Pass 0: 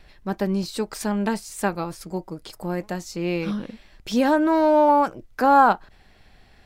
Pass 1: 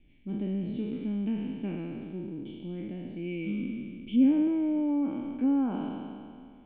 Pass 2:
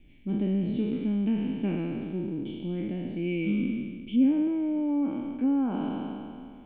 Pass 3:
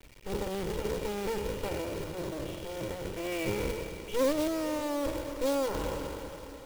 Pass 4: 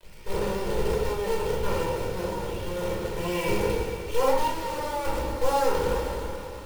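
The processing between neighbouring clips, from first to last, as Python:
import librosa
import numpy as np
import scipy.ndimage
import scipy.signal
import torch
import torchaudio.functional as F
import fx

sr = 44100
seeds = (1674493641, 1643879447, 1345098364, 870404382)

y1 = fx.spec_trails(x, sr, decay_s=2.18)
y1 = fx.formant_cascade(y1, sr, vowel='i')
y1 = fx.env_lowpass_down(y1, sr, base_hz=2000.0, full_db=-24.5)
y2 = fx.rider(y1, sr, range_db=3, speed_s=0.5)
y2 = y2 * librosa.db_to_amplitude(2.5)
y3 = fx.lower_of_two(y2, sr, delay_ms=2.1)
y3 = fx.quant_companded(y3, sr, bits=4)
y3 = fx.echo_diffused(y3, sr, ms=470, feedback_pct=57, wet_db=-15.0)
y4 = fx.lower_of_two(y3, sr, delay_ms=2.2)
y4 = fx.room_shoebox(y4, sr, seeds[0], volume_m3=730.0, walls='furnished', distance_m=5.0)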